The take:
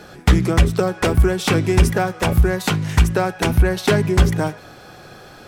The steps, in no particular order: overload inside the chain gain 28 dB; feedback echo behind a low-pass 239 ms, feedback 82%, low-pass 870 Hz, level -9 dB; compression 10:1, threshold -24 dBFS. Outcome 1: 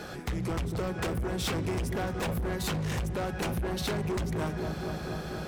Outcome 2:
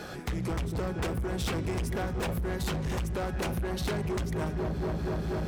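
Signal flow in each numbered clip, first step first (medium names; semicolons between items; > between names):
compression > feedback echo behind a low-pass > overload inside the chain; feedback echo behind a low-pass > compression > overload inside the chain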